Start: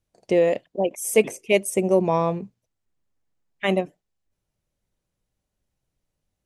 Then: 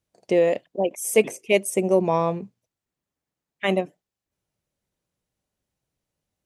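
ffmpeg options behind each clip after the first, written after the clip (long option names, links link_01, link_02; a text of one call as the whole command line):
ffmpeg -i in.wav -af "highpass=frequency=110:poles=1" out.wav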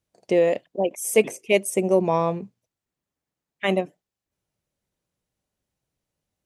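ffmpeg -i in.wav -af anull out.wav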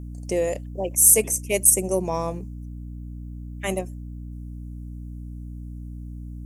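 ffmpeg -i in.wav -af "aexciter=amount=7.3:drive=7.6:freq=5500,aeval=exprs='val(0)+0.0355*(sin(2*PI*60*n/s)+sin(2*PI*2*60*n/s)/2+sin(2*PI*3*60*n/s)/3+sin(2*PI*4*60*n/s)/4+sin(2*PI*5*60*n/s)/5)':channel_layout=same,volume=-5dB" out.wav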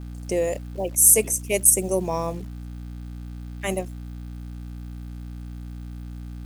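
ffmpeg -i in.wav -af "acrusher=bits=9:dc=4:mix=0:aa=0.000001" out.wav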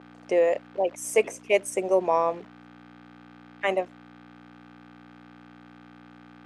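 ffmpeg -i in.wav -af "highpass=510,lowpass=2200,volume=6dB" out.wav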